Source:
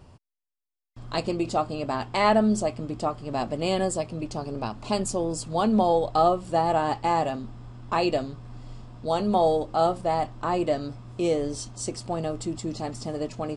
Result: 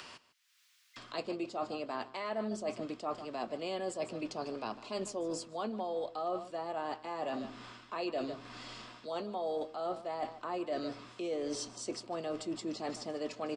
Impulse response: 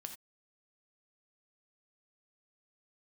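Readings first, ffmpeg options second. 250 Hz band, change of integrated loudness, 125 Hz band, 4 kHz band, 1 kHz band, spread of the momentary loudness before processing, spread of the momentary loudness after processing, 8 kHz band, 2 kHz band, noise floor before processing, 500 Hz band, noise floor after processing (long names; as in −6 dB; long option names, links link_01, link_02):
−12.5 dB, −12.5 dB, −19.5 dB, −9.0 dB, −14.0 dB, 11 LU, 6 LU, −10.5 dB, −10.5 dB, below −85 dBFS, −11.5 dB, −69 dBFS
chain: -filter_complex "[0:a]asoftclip=type=hard:threshold=-10.5dB,acrossover=split=550|1300[link_01][link_02][link_03];[link_03]acompressor=mode=upward:threshold=-36dB:ratio=2.5[link_04];[link_01][link_02][link_04]amix=inputs=3:normalize=0,acrossover=split=230 6300:gain=0.0708 1 0.224[link_05][link_06][link_07];[link_05][link_06][link_07]amix=inputs=3:normalize=0,aecho=1:1:151:0.133,areverse,acompressor=threshold=-34dB:ratio=6,areverse,bandreject=frequency=830:width=12"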